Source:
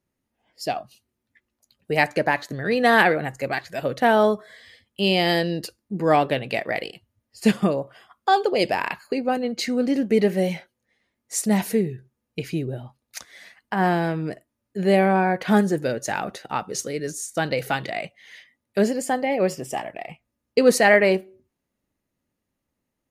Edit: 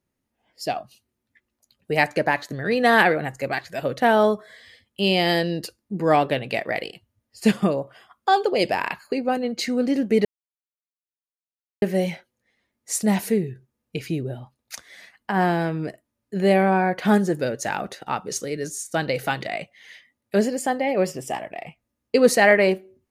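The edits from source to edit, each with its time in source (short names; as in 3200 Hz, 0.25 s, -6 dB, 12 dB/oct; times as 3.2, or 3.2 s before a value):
10.25 insert silence 1.57 s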